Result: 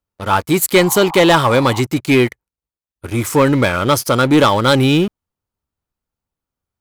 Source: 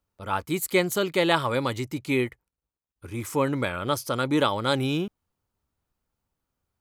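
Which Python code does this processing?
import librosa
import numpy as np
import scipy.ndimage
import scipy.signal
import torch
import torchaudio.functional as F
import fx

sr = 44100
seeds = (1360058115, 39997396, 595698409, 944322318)

y = fx.leveller(x, sr, passes=3)
y = fx.dmg_noise_band(y, sr, seeds[0], low_hz=730.0, high_hz=1100.0, level_db=-31.0, at=(0.75, 1.8), fade=0.02)
y = y * 10.0 ** (2.5 / 20.0)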